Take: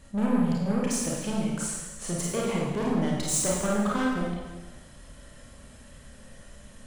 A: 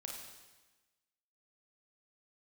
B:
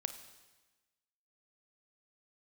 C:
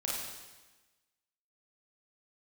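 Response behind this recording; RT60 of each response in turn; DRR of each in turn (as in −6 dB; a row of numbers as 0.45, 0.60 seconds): C; 1.2, 1.2, 1.2 seconds; −0.5, 9.0, −5.0 decibels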